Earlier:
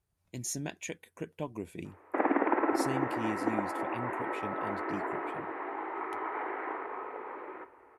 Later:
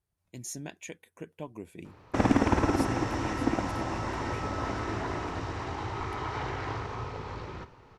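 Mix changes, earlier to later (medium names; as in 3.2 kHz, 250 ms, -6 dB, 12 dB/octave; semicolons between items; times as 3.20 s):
speech -3.0 dB; background: remove elliptic band-pass 320–2100 Hz, stop band 50 dB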